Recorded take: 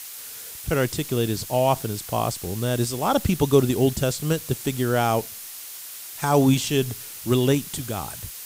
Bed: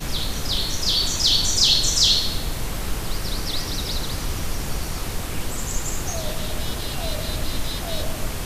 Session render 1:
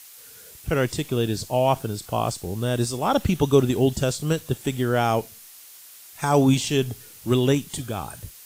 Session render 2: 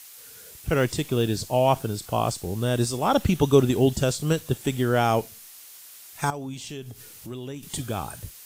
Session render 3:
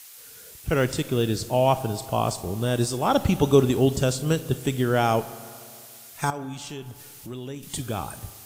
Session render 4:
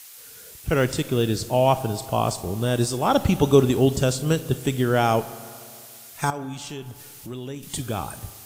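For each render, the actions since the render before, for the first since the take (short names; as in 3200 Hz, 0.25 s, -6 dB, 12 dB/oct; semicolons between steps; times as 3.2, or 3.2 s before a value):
noise print and reduce 8 dB
0.7–1.38 block floating point 7-bit; 6.3–7.63 compressor 3:1, threshold -38 dBFS
spring tank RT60 2.3 s, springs 31/36 ms, chirp 45 ms, DRR 14.5 dB
gain +1.5 dB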